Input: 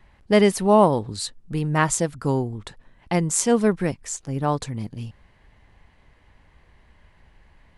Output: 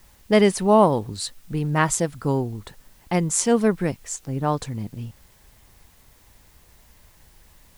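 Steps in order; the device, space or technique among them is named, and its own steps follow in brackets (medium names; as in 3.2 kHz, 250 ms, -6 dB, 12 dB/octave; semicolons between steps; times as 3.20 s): plain cassette with noise reduction switched in (tape noise reduction on one side only decoder only; wow and flutter 29 cents; white noise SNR 34 dB)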